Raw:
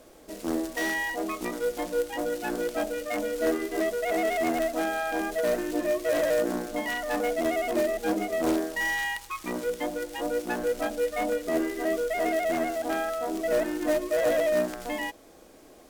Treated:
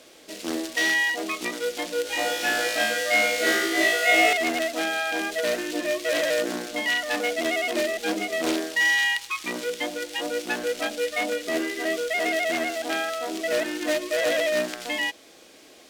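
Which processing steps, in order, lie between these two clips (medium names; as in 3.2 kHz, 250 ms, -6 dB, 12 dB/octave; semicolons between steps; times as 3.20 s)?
frequency weighting D; 2.03–4.33 s: flutter echo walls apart 3.1 m, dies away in 1 s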